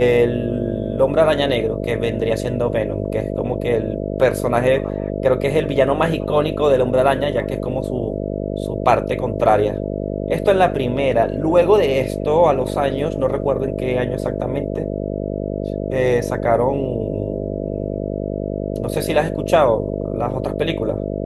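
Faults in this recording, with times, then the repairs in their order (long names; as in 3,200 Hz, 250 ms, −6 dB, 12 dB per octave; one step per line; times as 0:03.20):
mains buzz 50 Hz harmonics 13 −24 dBFS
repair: hum removal 50 Hz, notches 13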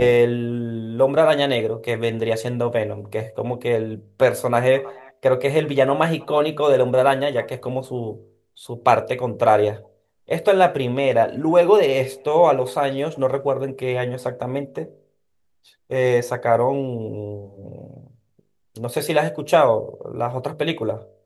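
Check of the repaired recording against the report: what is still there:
none of them is left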